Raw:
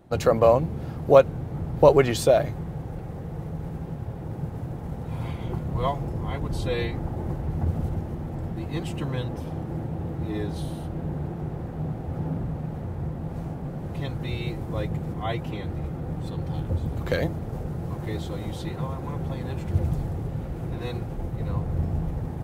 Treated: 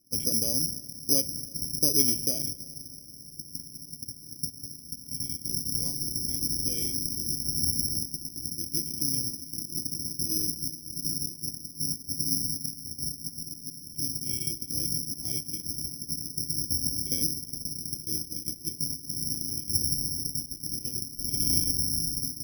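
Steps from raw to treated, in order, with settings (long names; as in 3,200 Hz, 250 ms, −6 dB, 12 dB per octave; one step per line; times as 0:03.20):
0:21.28–0:21.71: each half-wave held at its own peak
noise gate −29 dBFS, range −15 dB
in parallel at +1.5 dB: downward compressor, threshold −33 dBFS, peak gain reduction 22 dB
on the sum: formant resonators in series i
on a send at −18.5 dB: convolution reverb RT60 2.6 s, pre-delay 6 ms
on the sum: bad sample-rate conversion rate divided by 8×, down filtered, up zero stuff
level −3.5 dB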